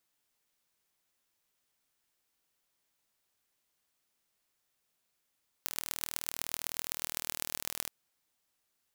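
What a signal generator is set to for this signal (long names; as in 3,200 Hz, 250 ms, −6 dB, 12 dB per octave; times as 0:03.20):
impulse train 39.7 per second, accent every 5, −4.5 dBFS 2.23 s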